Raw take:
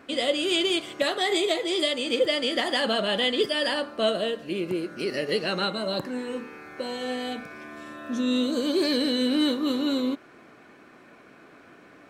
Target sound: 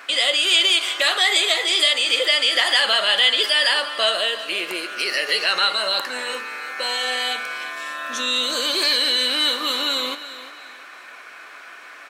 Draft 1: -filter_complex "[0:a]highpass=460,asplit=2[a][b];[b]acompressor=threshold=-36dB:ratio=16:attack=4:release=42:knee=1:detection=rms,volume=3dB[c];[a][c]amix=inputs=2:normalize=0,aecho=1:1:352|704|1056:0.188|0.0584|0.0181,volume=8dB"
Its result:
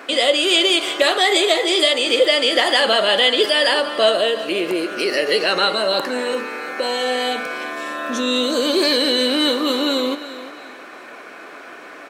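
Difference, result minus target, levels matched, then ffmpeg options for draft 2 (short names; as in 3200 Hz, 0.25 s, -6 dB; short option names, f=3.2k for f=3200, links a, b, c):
500 Hz band +9.5 dB
-filter_complex "[0:a]highpass=1.2k,asplit=2[a][b];[b]acompressor=threshold=-36dB:ratio=16:attack=4:release=42:knee=1:detection=rms,volume=3dB[c];[a][c]amix=inputs=2:normalize=0,aecho=1:1:352|704|1056:0.188|0.0584|0.0181,volume=8dB"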